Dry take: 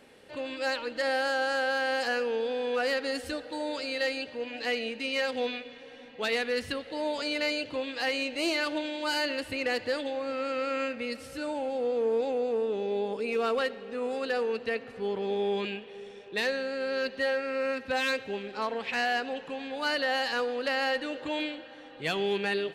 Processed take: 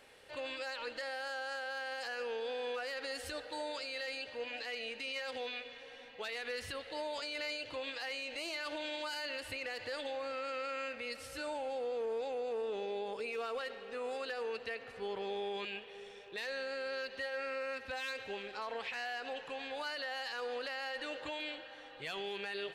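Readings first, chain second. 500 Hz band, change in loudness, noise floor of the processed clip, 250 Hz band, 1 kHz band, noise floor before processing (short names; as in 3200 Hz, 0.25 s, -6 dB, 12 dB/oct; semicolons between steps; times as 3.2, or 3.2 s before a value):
-10.0 dB, -9.5 dB, -52 dBFS, -15.5 dB, -9.0 dB, -48 dBFS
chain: bell 230 Hz -12.5 dB 1.7 oct; limiter -30.5 dBFS, peak gain reduction 11.5 dB; gain -1 dB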